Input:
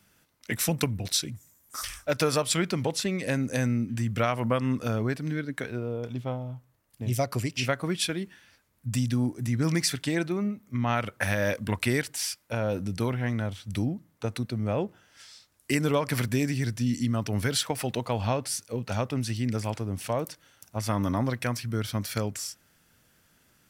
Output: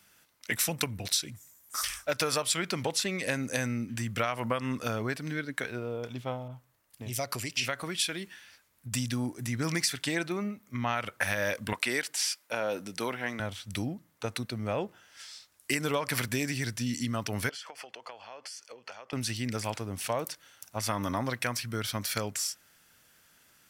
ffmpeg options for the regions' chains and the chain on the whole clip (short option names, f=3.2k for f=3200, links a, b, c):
-filter_complex "[0:a]asettb=1/sr,asplit=3[a][b][c];[a]atrim=end=6.484[d];[b]atrim=start=6.48:end=8.92,asetpts=PTS-STARTPTS,afade=t=in:d=0.004:c=qsin,afade=t=out:st=2.436:d=0.004:c=qsin,acompressor=threshold=-31dB:ratio=2:attack=3.2:release=140:knee=1:detection=peak,adynamicequalizer=threshold=0.00501:dfrequency=1700:dqfactor=0.7:tfrequency=1700:tqfactor=0.7:attack=5:release=100:ratio=0.375:range=1.5:mode=boostabove:tftype=highshelf[e];[c]atrim=start=8.916[f];[d][e]acrossfade=d=0.004:c1=hsin:c2=qsin[g];[g][f]acrossfade=d=0.004:c1=qsin:c2=hsin,asettb=1/sr,asplit=3[h][i][j];[h]atrim=end=11.734[k];[i]atrim=start=11.73:end=13.4,asetpts=PTS-STARTPTS,afade=t=in:d=0.004:c=qsin,afade=t=out:st=1.666:d=0.004:c=qsin,acrossover=split=9000[l][m];[m]acompressor=threshold=-45dB:ratio=4:attack=1:release=60[n];[l][n]amix=inputs=2:normalize=0,highpass=240[o];[j]atrim=start=13.396[p];[k][o]acrossfade=d=0.004:c1=hsin:c2=qsin[q];[q][p]acrossfade=d=0.004:c1=qsin:c2=hsin,asettb=1/sr,asplit=3[r][s][t];[r]atrim=end=17.494[u];[s]atrim=start=17.49:end=19.13,asetpts=PTS-STARTPTS,afade=t=in:d=0.004:c=qsin,afade=t=out:st=1.636:d=0.004:c=qsin,acompressor=threshold=-37dB:ratio=16:attack=3.2:release=140:knee=1:detection=peak,asuperstop=centerf=3800:order=4:qfactor=7,acrossover=split=350 6700:gain=0.0891 1 0.158[v][w][x];[v][w][x]amix=inputs=3:normalize=0[y];[t]atrim=start=19.126[z];[u][y]acrossfade=d=0.004:c1=hsin:c2=qsin[aa];[aa][z]acrossfade=d=0.004:c1=qsin:c2=hsin,lowshelf=f=500:g=-10.5,acompressor=threshold=-28dB:ratio=6,volume=3.5dB"